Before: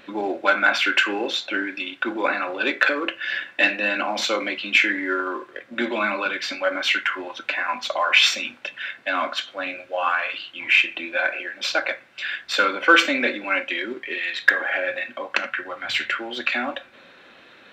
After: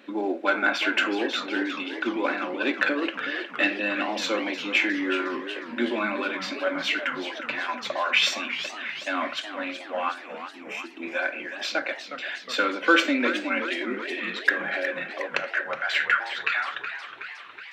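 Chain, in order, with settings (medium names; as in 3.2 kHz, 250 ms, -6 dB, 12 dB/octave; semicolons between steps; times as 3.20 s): high-pass sweep 260 Hz -> 2 kHz, 14.76–17.21 s; 10.12–11.02 s: time-frequency box 470–5100 Hz -14 dB; 15.55–16.33 s: peaking EQ 1.6 kHz +9.5 dB 0.69 oct; modulated delay 366 ms, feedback 61%, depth 174 cents, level -10.5 dB; trim -5.5 dB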